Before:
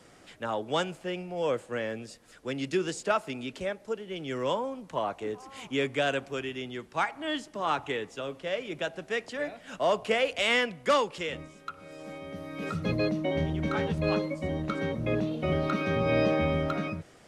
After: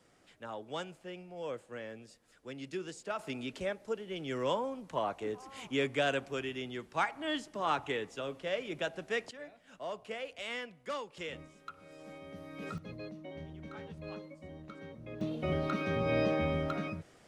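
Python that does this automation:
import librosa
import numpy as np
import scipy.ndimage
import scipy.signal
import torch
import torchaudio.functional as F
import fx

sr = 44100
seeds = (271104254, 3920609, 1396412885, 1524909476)

y = fx.gain(x, sr, db=fx.steps((0.0, -11.0), (3.19, -3.0), (9.31, -14.5), (11.17, -7.5), (12.78, -17.0), (15.21, -5.0)))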